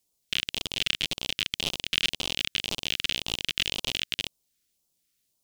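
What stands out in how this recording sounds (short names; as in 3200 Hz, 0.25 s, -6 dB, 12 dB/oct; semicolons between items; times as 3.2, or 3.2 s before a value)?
phasing stages 2, 1.9 Hz, lowest notch 800–1700 Hz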